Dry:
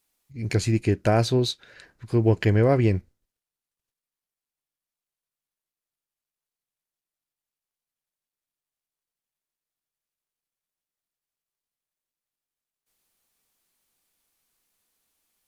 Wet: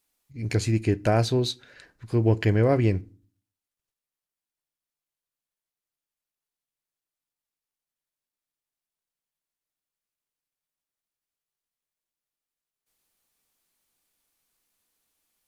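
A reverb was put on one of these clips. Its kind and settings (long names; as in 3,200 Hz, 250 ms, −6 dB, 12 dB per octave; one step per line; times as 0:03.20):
feedback delay network reverb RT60 0.39 s, low-frequency decay 1.55×, high-frequency decay 0.8×, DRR 18.5 dB
level −1.5 dB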